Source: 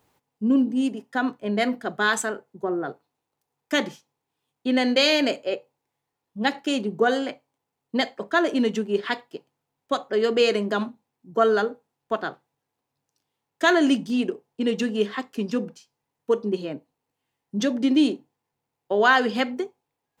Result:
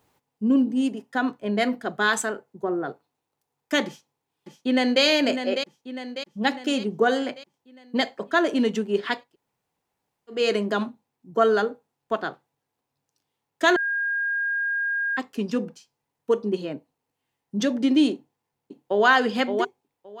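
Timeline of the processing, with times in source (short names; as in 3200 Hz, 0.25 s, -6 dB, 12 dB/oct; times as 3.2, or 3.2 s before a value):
3.86–5.03 echo throw 0.6 s, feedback 55%, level -8 dB
9.24–10.39 room tone, crossfade 0.24 s
13.76–15.17 bleep 1620 Hz -22.5 dBFS
18.13–19.07 echo throw 0.57 s, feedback 15%, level -5.5 dB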